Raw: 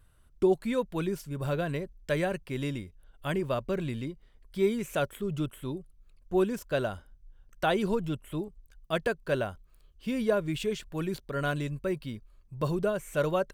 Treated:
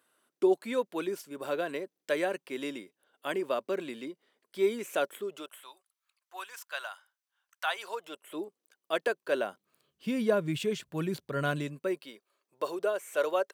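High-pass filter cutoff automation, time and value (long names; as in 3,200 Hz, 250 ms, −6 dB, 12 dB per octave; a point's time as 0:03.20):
high-pass filter 24 dB per octave
0:05.18 280 Hz
0:05.77 930 Hz
0:07.65 930 Hz
0:08.39 310 Hz
0:09.27 310 Hz
0:10.20 110 Hz
0:11.43 110 Hz
0:12.12 380 Hz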